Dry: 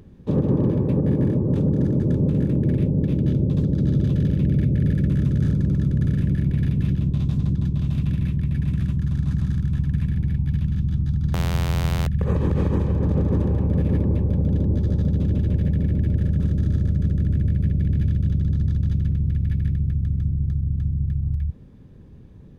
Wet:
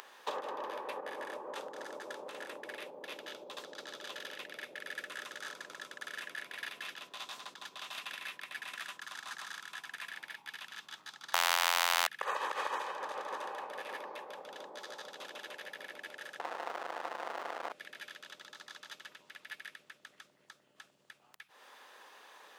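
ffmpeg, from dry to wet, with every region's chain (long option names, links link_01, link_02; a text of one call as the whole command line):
ffmpeg -i in.wav -filter_complex "[0:a]asettb=1/sr,asplit=3[link_01][link_02][link_03];[link_01]atrim=end=16.394[link_04];[link_02]atrim=start=16.39:end=17.72,asetpts=PTS-STARTPTS,afade=type=in:duration=0.004:curve=qsin,afade=type=out:start_time=1.326:duration=0.004:curve=qsin,aemphasis=mode=reproduction:type=riaa,asoftclip=type=hard:threshold=-11dB[link_05];[link_03]atrim=start=17.716[link_06];[link_04][link_05]acrossfade=duration=0.004:curve1=hsin:curve2=qsin[link_07];[link_07][link_06]acrossfade=duration=0.004:curve1=qsin:curve2=hsin,acompressor=threshold=-29dB:ratio=4,highpass=frequency=840:width=0.5412,highpass=frequency=840:width=1.3066,bandreject=frequency=2300:width=19,volume=15dB" out.wav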